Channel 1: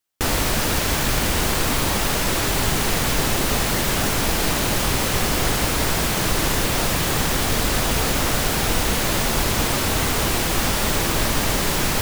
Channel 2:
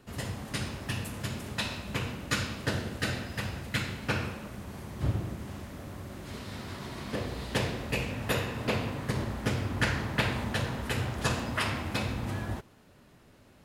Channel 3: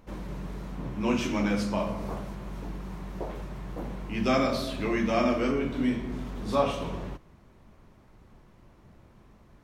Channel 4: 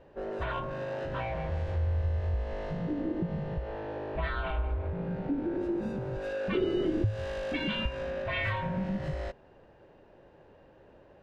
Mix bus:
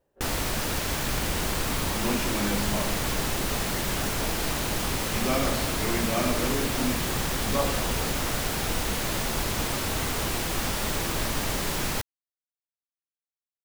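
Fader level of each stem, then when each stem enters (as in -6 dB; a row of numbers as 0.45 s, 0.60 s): -7.5 dB, mute, -3.0 dB, -18.0 dB; 0.00 s, mute, 1.00 s, 0.00 s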